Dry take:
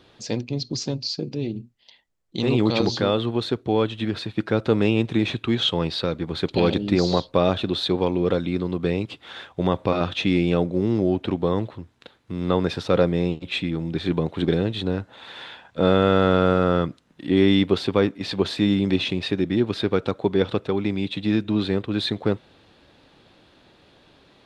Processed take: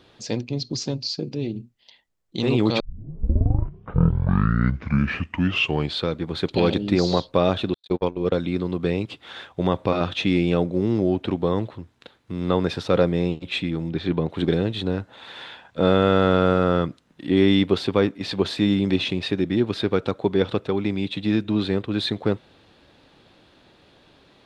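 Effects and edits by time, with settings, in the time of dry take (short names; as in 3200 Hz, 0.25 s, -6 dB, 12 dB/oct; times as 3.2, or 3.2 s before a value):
2.8 tape start 3.37 s
7.74–8.32 gate -22 dBFS, range -60 dB
13.89–14.3 air absorption 93 m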